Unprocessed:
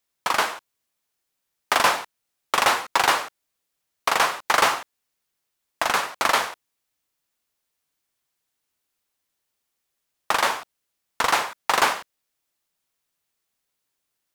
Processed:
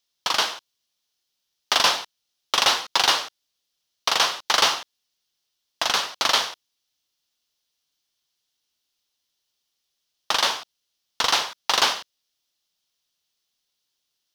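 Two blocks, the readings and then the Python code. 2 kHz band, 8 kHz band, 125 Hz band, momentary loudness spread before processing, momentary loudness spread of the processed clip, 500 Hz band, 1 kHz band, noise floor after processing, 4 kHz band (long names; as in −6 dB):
−2.5 dB, +2.5 dB, can't be measured, 10 LU, 10 LU, −3.5 dB, −3.5 dB, −78 dBFS, +7.0 dB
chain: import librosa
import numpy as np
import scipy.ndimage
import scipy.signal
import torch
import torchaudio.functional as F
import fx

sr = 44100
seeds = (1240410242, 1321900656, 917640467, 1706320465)

y = fx.band_shelf(x, sr, hz=4200.0, db=11.0, octaves=1.3)
y = F.gain(torch.from_numpy(y), -3.5).numpy()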